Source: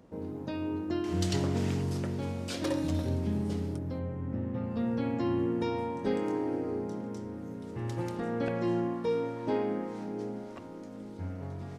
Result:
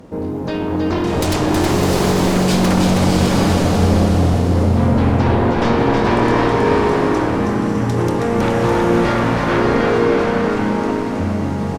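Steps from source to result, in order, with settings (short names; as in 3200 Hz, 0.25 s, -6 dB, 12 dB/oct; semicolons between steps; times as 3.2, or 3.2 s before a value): sine folder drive 13 dB, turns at -17 dBFS; bouncing-ball echo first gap 0.32 s, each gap 0.9×, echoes 5; bloom reverb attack 0.76 s, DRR -1 dB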